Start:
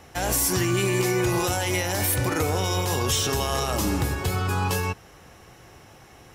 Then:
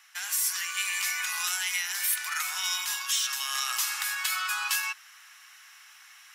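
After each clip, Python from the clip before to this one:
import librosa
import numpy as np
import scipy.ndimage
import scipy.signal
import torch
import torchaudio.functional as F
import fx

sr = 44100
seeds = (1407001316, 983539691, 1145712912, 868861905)

y = scipy.signal.sosfilt(scipy.signal.cheby2(4, 50, 510.0, 'highpass', fs=sr, output='sos'), x)
y = fx.rider(y, sr, range_db=10, speed_s=0.5)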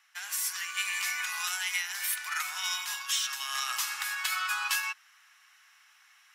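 y = fx.high_shelf(x, sr, hz=4500.0, db=-6.0)
y = fx.upward_expand(y, sr, threshold_db=-45.0, expansion=1.5)
y = F.gain(torch.from_numpy(y), 2.0).numpy()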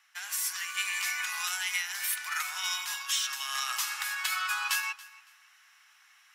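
y = fx.echo_feedback(x, sr, ms=280, feedback_pct=23, wet_db=-20.5)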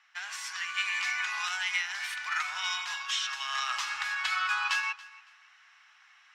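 y = fx.air_absorb(x, sr, metres=140.0)
y = F.gain(torch.from_numpy(y), 3.5).numpy()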